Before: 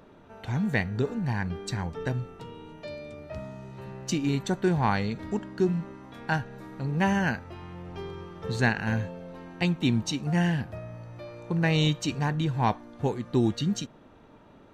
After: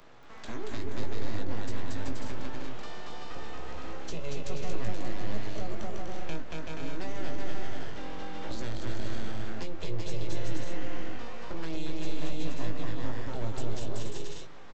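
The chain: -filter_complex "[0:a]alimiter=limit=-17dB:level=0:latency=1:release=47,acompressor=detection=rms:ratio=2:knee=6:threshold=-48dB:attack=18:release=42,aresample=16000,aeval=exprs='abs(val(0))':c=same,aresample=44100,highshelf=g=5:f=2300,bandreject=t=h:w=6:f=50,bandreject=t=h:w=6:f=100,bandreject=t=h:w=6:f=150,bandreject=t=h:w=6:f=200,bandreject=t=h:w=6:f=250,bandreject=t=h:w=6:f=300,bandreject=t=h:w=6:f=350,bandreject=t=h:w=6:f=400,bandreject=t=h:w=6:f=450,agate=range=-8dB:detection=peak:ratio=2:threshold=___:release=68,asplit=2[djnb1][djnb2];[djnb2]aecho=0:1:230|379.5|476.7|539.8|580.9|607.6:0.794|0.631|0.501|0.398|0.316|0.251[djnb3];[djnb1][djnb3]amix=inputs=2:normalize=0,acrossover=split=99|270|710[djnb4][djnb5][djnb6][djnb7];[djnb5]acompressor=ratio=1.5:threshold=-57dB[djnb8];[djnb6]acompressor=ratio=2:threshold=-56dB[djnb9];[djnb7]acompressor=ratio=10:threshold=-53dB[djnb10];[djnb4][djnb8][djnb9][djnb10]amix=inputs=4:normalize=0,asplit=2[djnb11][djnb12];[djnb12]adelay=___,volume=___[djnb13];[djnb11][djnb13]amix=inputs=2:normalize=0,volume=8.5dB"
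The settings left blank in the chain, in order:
-39dB, 19, -7dB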